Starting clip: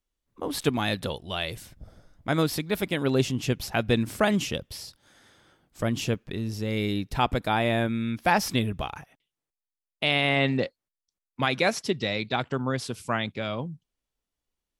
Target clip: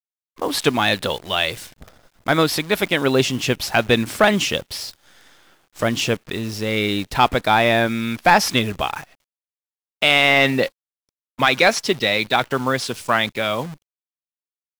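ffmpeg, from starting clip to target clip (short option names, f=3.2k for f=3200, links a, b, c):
-filter_complex "[0:a]asplit=2[a][b];[b]highpass=f=720:p=1,volume=11dB,asoftclip=type=tanh:threshold=-7.5dB[c];[a][c]amix=inputs=2:normalize=0,lowpass=f=5.3k:p=1,volume=-6dB,acrusher=bits=8:dc=4:mix=0:aa=0.000001,volume=6dB"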